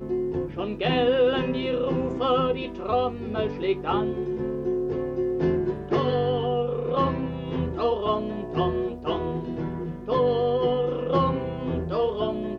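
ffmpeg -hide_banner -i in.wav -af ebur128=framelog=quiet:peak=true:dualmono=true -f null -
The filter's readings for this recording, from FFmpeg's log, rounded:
Integrated loudness:
  I:         -22.9 LUFS
  Threshold: -32.9 LUFS
Loudness range:
  LRA:         2.1 LU
  Threshold: -43.1 LUFS
  LRA low:   -24.0 LUFS
  LRA high:  -21.9 LUFS
True peak:
  Peak:      -12.7 dBFS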